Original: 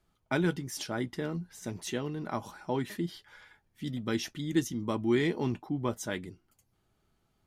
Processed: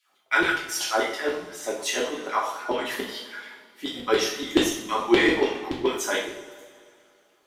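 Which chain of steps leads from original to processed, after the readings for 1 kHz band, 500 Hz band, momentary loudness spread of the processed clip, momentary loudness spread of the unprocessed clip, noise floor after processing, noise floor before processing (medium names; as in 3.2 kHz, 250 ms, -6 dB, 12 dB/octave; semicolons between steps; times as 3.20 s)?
+12.0 dB, +9.0 dB, 14 LU, 10 LU, -64 dBFS, -75 dBFS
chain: LFO high-pass saw down 7 Hz 330–3500 Hz; hum notches 50/100/150/200/250/300 Hz; two-slope reverb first 0.59 s, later 2.5 s, from -18 dB, DRR -5 dB; trim +4 dB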